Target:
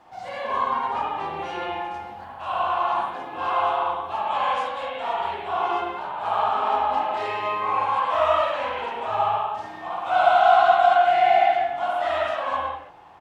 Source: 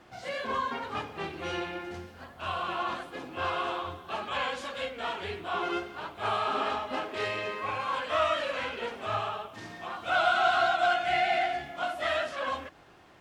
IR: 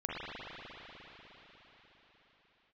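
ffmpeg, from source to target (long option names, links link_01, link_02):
-filter_complex "[0:a]firequalizer=gain_entry='entry(430,0);entry(840,15);entry(1400,2)':delay=0.05:min_phase=1,asettb=1/sr,asplit=3[link_01][link_02][link_03];[link_01]atrim=end=6.124[link_04];[link_02]atrim=start=6.12:end=6.72,asetpts=PTS-STARTPTS,afade=type=in:duration=0.004:curve=qsin,afade=type=out:start_time=0.596:duration=0.004:curve=qsin,tremolo=f=180:d=0.519[link_05];[link_03]atrim=start=6.716[link_06];[link_04][link_05]acrossfade=duration=0.004:curve1=hsin:curve2=qsin[link_07];[link_07][link_06]acrossfade=duration=0.004:curve1=qsin:curve2=hsin[link_08];[1:a]atrim=start_sample=2205,afade=type=out:start_time=0.26:duration=0.01,atrim=end_sample=11907[link_09];[link_08][link_09]afir=irnorm=-1:irlink=0,volume=-3dB"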